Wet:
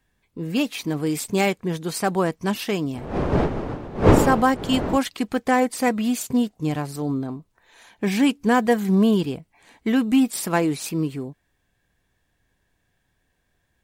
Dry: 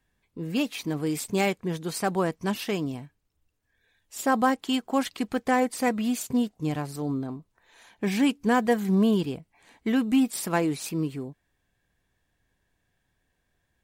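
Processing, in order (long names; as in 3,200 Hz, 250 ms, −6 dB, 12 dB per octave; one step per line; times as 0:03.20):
0:02.93–0:04.96: wind on the microphone 470 Hz −24 dBFS
level +4 dB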